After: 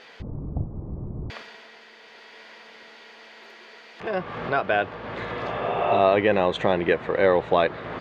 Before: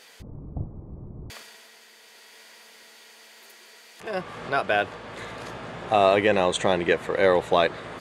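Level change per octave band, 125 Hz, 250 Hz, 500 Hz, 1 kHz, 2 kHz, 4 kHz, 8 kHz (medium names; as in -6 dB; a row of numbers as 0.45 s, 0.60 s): +3.5 dB, +1.5 dB, +1.0 dB, +0.5 dB, 0.0 dB, -3.5 dB, under -15 dB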